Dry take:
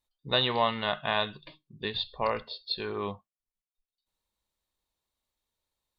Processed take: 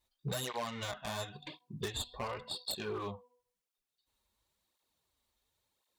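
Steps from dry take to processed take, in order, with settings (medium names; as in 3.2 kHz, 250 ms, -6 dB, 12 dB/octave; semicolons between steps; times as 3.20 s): tracing distortion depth 0.17 ms; de-hum 247.1 Hz, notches 4; compression 6:1, threshold -39 dBFS, peak gain reduction 17.5 dB; wavefolder -33.5 dBFS; cancelling through-zero flanger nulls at 0.94 Hz, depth 7.5 ms; trim +7.5 dB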